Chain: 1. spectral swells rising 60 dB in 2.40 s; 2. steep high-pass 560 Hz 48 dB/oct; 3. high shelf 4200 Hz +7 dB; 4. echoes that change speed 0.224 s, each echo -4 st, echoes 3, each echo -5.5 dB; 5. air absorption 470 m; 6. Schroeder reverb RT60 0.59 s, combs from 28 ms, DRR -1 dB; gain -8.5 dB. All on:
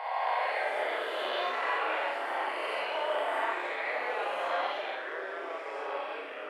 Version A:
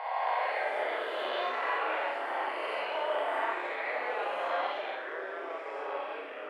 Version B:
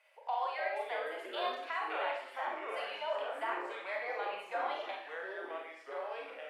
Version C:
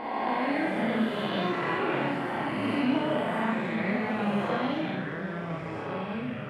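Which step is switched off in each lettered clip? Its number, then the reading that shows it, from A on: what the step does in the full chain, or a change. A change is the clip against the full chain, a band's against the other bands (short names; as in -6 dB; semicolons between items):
3, 4 kHz band -2.5 dB; 1, 2 kHz band -1.5 dB; 2, 250 Hz band +22.5 dB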